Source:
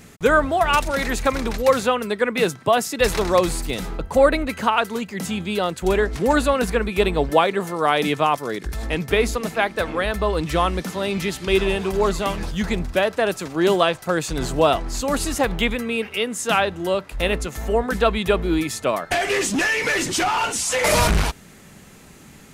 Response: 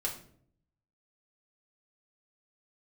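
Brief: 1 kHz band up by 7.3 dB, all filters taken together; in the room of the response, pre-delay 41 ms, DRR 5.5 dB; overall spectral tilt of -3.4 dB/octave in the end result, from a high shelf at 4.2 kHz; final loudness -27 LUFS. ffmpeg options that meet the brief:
-filter_complex "[0:a]equalizer=f=1000:t=o:g=9,highshelf=f=4200:g=5.5,asplit=2[s0][s1];[1:a]atrim=start_sample=2205,adelay=41[s2];[s1][s2]afir=irnorm=-1:irlink=0,volume=0.376[s3];[s0][s3]amix=inputs=2:normalize=0,volume=0.282"

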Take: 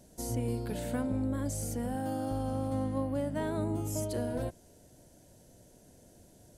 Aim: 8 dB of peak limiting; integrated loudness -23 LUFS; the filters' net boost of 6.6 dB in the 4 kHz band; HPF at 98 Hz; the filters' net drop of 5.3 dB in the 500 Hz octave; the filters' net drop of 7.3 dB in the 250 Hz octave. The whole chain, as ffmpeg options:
-af "highpass=98,equalizer=f=250:t=o:g=-7,equalizer=f=500:t=o:g=-5,equalizer=f=4000:t=o:g=8.5,volume=7.94,alimiter=limit=0.2:level=0:latency=1"

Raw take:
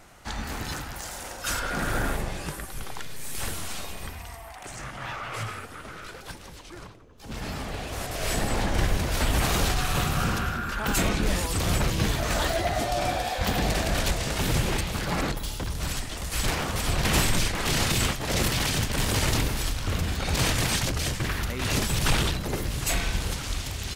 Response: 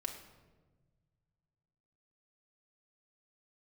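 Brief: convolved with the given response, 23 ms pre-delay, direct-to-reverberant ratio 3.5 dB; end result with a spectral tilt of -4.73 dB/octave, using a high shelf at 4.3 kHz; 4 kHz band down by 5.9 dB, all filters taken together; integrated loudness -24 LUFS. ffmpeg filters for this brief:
-filter_complex "[0:a]equalizer=f=4000:t=o:g=-5,highshelf=f=4300:g=-5,asplit=2[s0][s1];[1:a]atrim=start_sample=2205,adelay=23[s2];[s1][s2]afir=irnorm=-1:irlink=0,volume=0.708[s3];[s0][s3]amix=inputs=2:normalize=0,volume=1.41"

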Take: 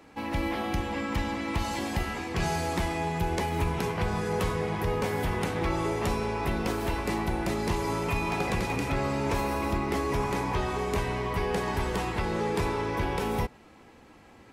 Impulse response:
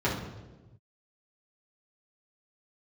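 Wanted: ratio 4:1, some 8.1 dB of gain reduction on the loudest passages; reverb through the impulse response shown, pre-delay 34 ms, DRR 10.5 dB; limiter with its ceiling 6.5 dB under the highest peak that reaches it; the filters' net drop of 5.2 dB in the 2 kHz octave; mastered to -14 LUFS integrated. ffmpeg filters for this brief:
-filter_complex "[0:a]equalizer=f=2000:t=o:g=-6.5,acompressor=threshold=0.02:ratio=4,alimiter=level_in=2.11:limit=0.0631:level=0:latency=1,volume=0.473,asplit=2[s0][s1];[1:a]atrim=start_sample=2205,adelay=34[s2];[s1][s2]afir=irnorm=-1:irlink=0,volume=0.075[s3];[s0][s3]amix=inputs=2:normalize=0,volume=15.8"

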